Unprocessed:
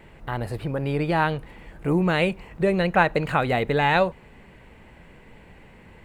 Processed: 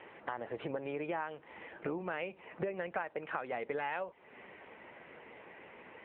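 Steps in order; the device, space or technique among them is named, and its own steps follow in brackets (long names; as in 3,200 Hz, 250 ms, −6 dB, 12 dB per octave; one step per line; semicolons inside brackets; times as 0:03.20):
voicemail (band-pass filter 380–3,000 Hz; downward compressor 8 to 1, threshold −36 dBFS, peak gain reduction 22 dB; level +2 dB; AMR narrowband 7.95 kbit/s 8,000 Hz)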